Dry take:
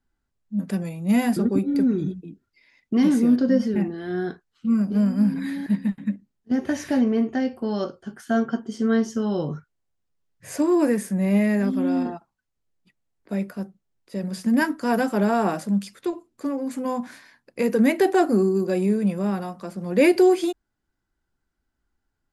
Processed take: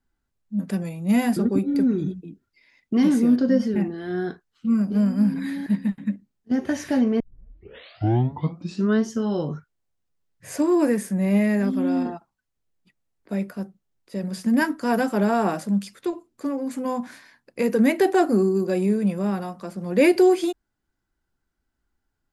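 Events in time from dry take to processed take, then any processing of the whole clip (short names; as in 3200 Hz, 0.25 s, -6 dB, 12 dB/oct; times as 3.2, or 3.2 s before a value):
7.2 tape start 1.83 s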